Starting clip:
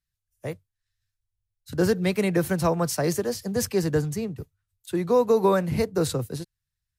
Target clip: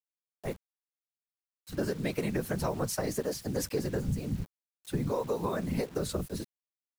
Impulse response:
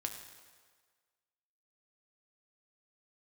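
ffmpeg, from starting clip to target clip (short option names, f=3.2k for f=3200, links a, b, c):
-filter_complex "[0:a]asettb=1/sr,asplit=3[a][b][c];[a]atrim=end=4.084[d];[b]atrim=start=4.08:end=5.48,asetpts=PTS-STARTPTS,afade=t=in:d=0.004:c=qsin,afade=t=out:st=1.396:d=0.004:c=qsin,lowshelf=f=190:t=q:w=3:g=9[e];[c]atrim=start=5.476[f];[d][e]acrossfade=d=0.004:c1=hsin:c2=qsin[g];[g][f]acrossfade=d=0.004:c1=qsin:c2=hsin,acompressor=threshold=-24dB:ratio=8,afftfilt=real='hypot(re,im)*cos(2*PI*random(0))':imag='hypot(re,im)*sin(2*PI*random(1))':win_size=512:overlap=0.75,acrusher=bits=8:mix=0:aa=0.000001,volume=2.5dB"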